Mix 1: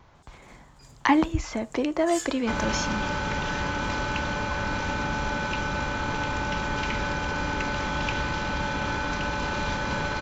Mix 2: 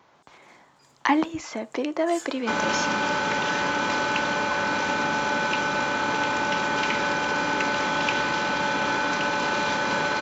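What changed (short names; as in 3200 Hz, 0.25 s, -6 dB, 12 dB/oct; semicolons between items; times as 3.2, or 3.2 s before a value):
first sound -5.5 dB; second sound +5.0 dB; master: add HPF 250 Hz 12 dB/oct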